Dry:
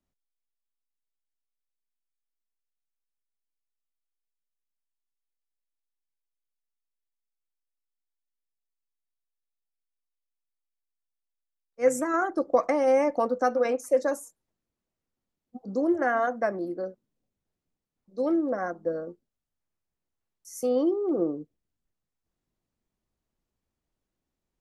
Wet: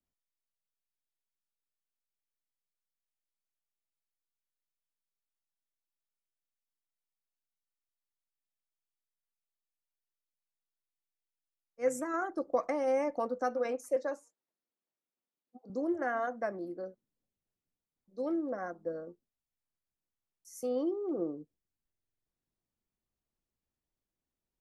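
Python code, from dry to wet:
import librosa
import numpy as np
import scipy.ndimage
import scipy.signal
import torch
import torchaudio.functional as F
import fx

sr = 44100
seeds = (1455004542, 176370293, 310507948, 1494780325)

y = fx.bandpass_edges(x, sr, low_hz=290.0, high_hz=4700.0, at=(13.96, 15.7))
y = fx.buffer_glitch(y, sr, at_s=(21.89,), block=2048, repeats=7)
y = F.gain(torch.from_numpy(y), -8.0).numpy()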